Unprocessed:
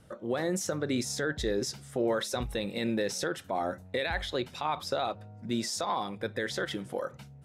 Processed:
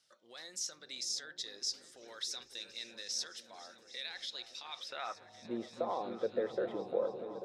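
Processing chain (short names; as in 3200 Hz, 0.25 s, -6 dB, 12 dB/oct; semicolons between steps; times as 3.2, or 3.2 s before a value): band-pass sweep 5000 Hz -> 500 Hz, 4.65–5.54; repeats that get brighter 0.28 s, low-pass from 200 Hz, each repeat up 1 oct, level -3 dB; gain +2 dB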